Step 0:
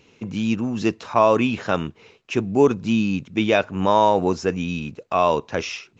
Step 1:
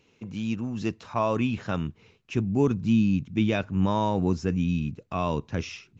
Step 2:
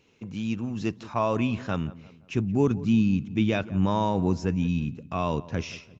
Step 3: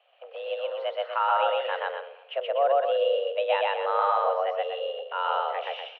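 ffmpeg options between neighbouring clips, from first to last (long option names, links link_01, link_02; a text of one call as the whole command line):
ffmpeg -i in.wav -af "asubboost=boost=6:cutoff=230,volume=-8.5dB" out.wav
ffmpeg -i in.wav -filter_complex "[0:a]asplit=2[link_01][link_02];[link_02]adelay=174,lowpass=frequency=1600:poles=1,volume=-17.5dB,asplit=2[link_03][link_04];[link_04]adelay=174,lowpass=frequency=1600:poles=1,volume=0.45,asplit=2[link_05][link_06];[link_06]adelay=174,lowpass=frequency=1600:poles=1,volume=0.45,asplit=2[link_07][link_08];[link_08]adelay=174,lowpass=frequency=1600:poles=1,volume=0.45[link_09];[link_01][link_03][link_05][link_07][link_09]amix=inputs=5:normalize=0" out.wav
ffmpeg -i in.wav -af "aecho=1:1:125.4|244.9:1|0.447,highpass=frequency=250:width_type=q:width=0.5412,highpass=frequency=250:width_type=q:width=1.307,lowpass=frequency=3000:width_type=q:width=0.5176,lowpass=frequency=3000:width_type=q:width=0.7071,lowpass=frequency=3000:width_type=q:width=1.932,afreqshift=280" out.wav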